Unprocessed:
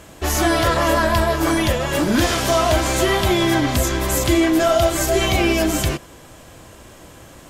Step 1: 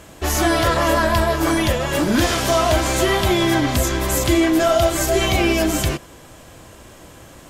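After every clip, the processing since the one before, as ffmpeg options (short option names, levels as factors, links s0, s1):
-af anull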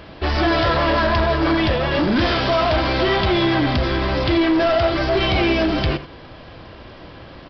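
-af "aresample=11025,asoftclip=type=tanh:threshold=0.141,aresample=44100,aecho=1:1:83:0.178,volume=1.5"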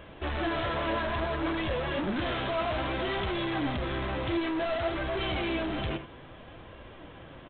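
-af "aresample=8000,asoftclip=type=tanh:threshold=0.1,aresample=44100,flanger=delay=1.8:depth=7.4:regen=70:speed=0.59:shape=sinusoidal,volume=0.668"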